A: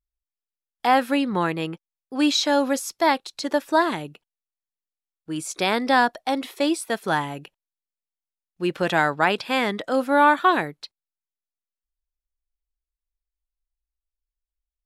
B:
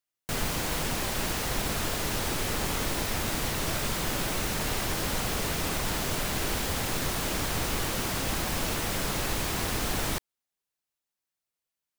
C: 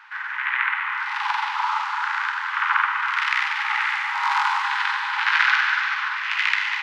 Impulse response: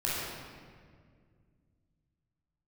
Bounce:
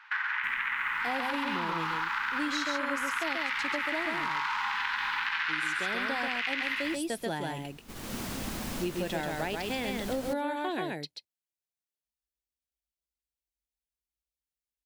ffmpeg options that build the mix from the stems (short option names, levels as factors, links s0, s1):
-filter_complex "[0:a]highpass=f=62:w=0.5412,highpass=f=62:w=1.3066,equalizer=f=1200:w=2.1:g=-15,adelay=200,volume=0.75,asplit=2[s0][s1];[s1]volume=0.668[s2];[1:a]equalizer=f=230:w=2.5:g=10,adelay=150,volume=0.422,afade=t=in:st=7.81:d=0.39:silence=0.398107[s3];[2:a]equalizer=f=2800:w=0.43:g=6,volume=1.19,asplit=2[s4][s5];[s5]volume=0.376[s6];[s3][s4]amix=inputs=2:normalize=0,agate=range=0.251:threshold=0.0112:ratio=16:detection=peak,acompressor=threshold=0.1:ratio=6,volume=1[s7];[s2][s6]amix=inputs=2:normalize=0,aecho=0:1:135:1[s8];[s0][s7][s8]amix=inputs=3:normalize=0,acompressor=threshold=0.0355:ratio=6"